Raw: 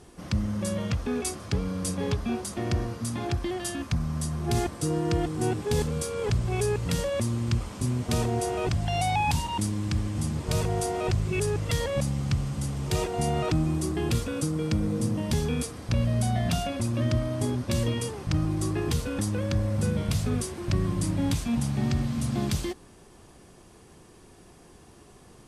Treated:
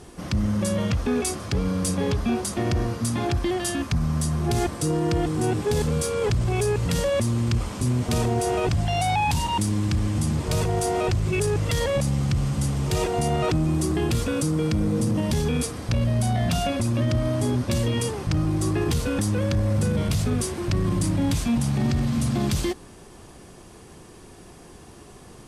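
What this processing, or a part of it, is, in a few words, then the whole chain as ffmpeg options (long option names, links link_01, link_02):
soft clipper into limiter: -af "asoftclip=type=tanh:threshold=-17dB,alimiter=limit=-22.5dB:level=0:latency=1:release=28,volume=6.5dB"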